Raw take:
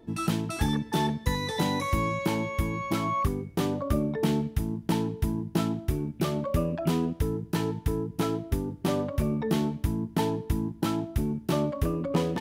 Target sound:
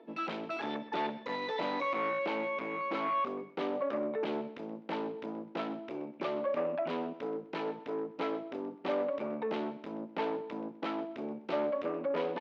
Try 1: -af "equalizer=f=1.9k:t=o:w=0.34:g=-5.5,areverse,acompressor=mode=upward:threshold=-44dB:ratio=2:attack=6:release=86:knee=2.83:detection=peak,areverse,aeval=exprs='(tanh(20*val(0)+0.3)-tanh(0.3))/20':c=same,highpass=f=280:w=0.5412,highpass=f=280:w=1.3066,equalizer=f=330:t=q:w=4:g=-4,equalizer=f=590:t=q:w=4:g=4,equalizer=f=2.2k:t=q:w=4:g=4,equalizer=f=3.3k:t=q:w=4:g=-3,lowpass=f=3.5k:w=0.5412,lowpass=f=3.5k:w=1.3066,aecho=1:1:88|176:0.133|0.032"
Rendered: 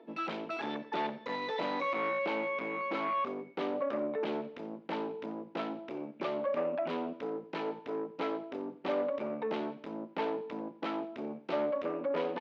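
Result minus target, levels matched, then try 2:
echo 39 ms early
-af "equalizer=f=1.9k:t=o:w=0.34:g=-5.5,areverse,acompressor=mode=upward:threshold=-44dB:ratio=2:attack=6:release=86:knee=2.83:detection=peak,areverse,aeval=exprs='(tanh(20*val(0)+0.3)-tanh(0.3))/20':c=same,highpass=f=280:w=0.5412,highpass=f=280:w=1.3066,equalizer=f=330:t=q:w=4:g=-4,equalizer=f=590:t=q:w=4:g=4,equalizer=f=2.2k:t=q:w=4:g=4,equalizer=f=3.3k:t=q:w=4:g=-3,lowpass=f=3.5k:w=0.5412,lowpass=f=3.5k:w=1.3066,aecho=1:1:127|254:0.133|0.032"

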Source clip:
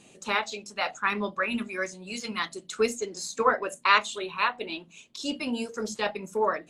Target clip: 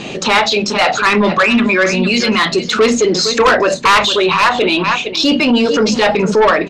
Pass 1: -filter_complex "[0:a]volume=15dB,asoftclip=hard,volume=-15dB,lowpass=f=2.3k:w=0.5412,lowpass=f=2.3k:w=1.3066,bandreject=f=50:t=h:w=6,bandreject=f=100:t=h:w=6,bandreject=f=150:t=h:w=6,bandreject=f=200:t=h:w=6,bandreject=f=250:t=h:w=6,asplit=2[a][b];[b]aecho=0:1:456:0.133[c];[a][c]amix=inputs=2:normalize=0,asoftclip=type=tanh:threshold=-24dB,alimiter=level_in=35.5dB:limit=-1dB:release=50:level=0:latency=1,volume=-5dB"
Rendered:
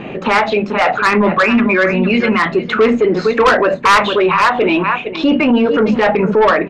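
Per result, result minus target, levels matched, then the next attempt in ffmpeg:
4000 Hz band -8.0 dB; overloaded stage: distortion -10 dB
-filter_complex "[0:a]volume=15dB,asoftclip=hard,volume=-15dB,lowpass=f=5k:w=0.5412,lowpass=f=5k:w=1.3066,bandreject=f=50:t=h:w=6,bandreject=f=100:t=h:w=6,bandreject=f=150:t=h:w=6,bandreject=f=200:t=h:w=6,bandreject=f=250:t=h:w=6,asplit=2[a][b];[b]aecho=0:1:456:0.133[c];[a][c]amix=inputs=2:normalize=0,asoftclip=type=tanh:threshold=-24dB,alimiter=level_in=35.5dB:limit=-1dB:release=50:level=0:latency=1,volume=-5dB"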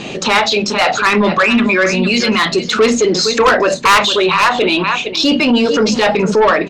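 overloaded stage: distortion -10 dB
-filter_complex "[0:a]volume=22.5dB,asoftclip=hard,volume=-22.5dB,lowpass=f=5k:w=0.5412,lowpass=f=5k:w=1.3066,bandreject=f=50:t=h:w=6,bandreject=f=100:t=h:w=6,bandreject=f=150:t=h:w=6,bandreject=f=200:t=h:w=6,bandreject=f=250:t=h:w=6,asplit=2[a][b];[b]aecho=0:1:456:0.133[c];[a][c]amix=inputs=2:normalize=0,asoftclip=type=tanh:threshold=-24dB,alimiter=level_in=35.5dB:limit=-1dB:release=50:level=0:latency=1,volume=-5dB"

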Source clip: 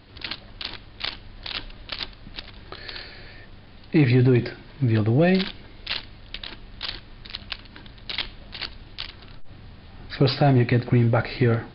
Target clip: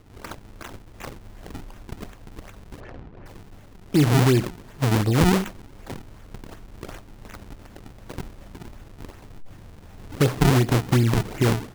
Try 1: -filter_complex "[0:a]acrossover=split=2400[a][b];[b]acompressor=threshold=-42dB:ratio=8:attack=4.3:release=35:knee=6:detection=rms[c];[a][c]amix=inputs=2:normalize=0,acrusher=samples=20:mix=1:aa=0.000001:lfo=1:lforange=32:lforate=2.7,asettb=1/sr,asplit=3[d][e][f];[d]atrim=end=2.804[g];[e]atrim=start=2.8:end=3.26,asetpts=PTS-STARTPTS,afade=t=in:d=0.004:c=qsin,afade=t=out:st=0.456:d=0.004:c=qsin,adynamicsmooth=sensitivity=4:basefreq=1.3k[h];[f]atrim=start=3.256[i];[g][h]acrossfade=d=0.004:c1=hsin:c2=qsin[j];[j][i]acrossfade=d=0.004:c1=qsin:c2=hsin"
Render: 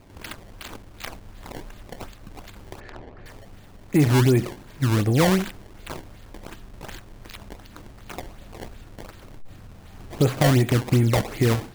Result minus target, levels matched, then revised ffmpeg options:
decimation with a swept rate: distortion -6 dB
-filter_complex "[0:a]acrossover=split=2400[a][b];[b]acompressor=threshold=-42dB:ratio=8:attack=4.3:release=35:knee=6:detection=rms[c];[a][c]amix=inputs=2:normalize=0,acrusher=samples=46:mix=1:aa=0.000001:lfo=1:lforange=73.6:lforate=2.7,asettb=1/sr,asplit=3[d][e][f];[d]atrim=end=2.804[g];[e]atrim=start=2.8:end=3.26,asetpts=PTS-STARTPTS,afade=t=in:d=0.004:c=qsin,afade=t=out:st=0.456:d=0.004:c=qsin,adynamicsmooth=sensitivity=4:basefreq=1.3k[h];[f]atrim=start=3.256[i];[g][h]acrossfade=d=0.004:c1=hsin:c2=qsin[j];[j][i]acrossfade=d=0.004:c1=qsin:c2=hsin"

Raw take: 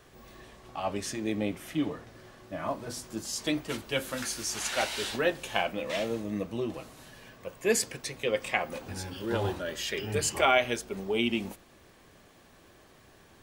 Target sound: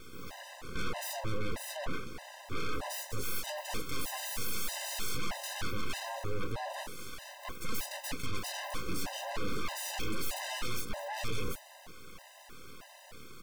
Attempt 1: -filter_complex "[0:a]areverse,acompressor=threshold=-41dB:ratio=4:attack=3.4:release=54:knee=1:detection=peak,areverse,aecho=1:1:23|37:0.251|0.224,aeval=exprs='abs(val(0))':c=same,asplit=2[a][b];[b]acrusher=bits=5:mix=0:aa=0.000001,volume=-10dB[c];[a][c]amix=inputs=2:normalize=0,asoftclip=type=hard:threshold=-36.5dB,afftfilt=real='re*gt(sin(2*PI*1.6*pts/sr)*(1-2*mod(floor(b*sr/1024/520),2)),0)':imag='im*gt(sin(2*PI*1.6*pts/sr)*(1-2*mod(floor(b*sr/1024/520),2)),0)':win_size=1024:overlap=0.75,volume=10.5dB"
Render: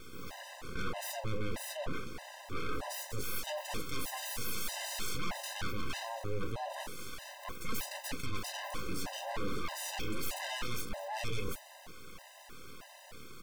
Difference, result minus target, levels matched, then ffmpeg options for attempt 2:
compressor: peak gain reduction +4.5 dB
-filter_complex "[0:a]areverse,acompressor=threshold=-35dB:ratio=4:attack=3.4:release=54:knee=1:detection=peak,areverse,aecho=1:1:23|37:0.251|0.224,aeval=exprs='abs(val(0))':c=same,asplit=2[a][b];[b]acrusher=bits=5:mix=0:aa=0.000001,volume=-10dB[c];[a][c]amix=inputs=2:normalize=0,asoftclip=type=hard:threshold=-36.5dB,afftfilt=real='re*gt(sin(2*PI*1.6*pts/sr)*(1-2*mod(floor(b*sr/1024/520),2)),0)':imag='im*gt(sin(2*PI*1.6*pts/sr)*(1-2*mod(floor(b*sr/1024/520),2)),0)':win_size=1024:overlap=0.75,volume=10.5dB"

